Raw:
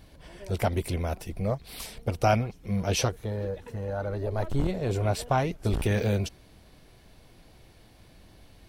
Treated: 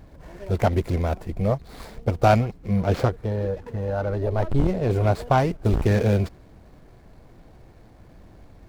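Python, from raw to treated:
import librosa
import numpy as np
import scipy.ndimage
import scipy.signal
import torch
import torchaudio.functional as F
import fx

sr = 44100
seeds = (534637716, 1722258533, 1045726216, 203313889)

y = scipy.signal.medfilt(x, 15)
y = fx.high_shelf(y, sr, hz=4700.0, db=-5.0, at=(2.68, 4.9))
y = y * 10.0 ** (6.0 / 20.0)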